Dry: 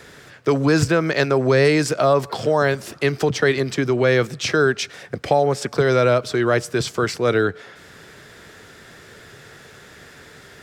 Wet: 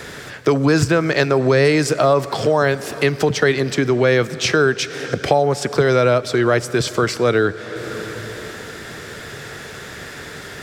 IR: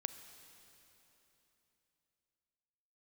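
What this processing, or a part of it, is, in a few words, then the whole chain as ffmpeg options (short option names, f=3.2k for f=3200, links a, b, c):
ducked reverb: -filter_complex "[0:a]asplit=3[a][b][c];[1:a]atrim=start_sample=2205[d];[b][d]afir=irnorm=-1:irlink=0[e];[c]apad=whole_len=468602[f];[e][f]sidechaincompress=threshold=-29dB:ratio=8:attack=29:release=427,volume=11.5dB[g];[a][g]amix=inputs=2:normalize=0,volume=-2dB"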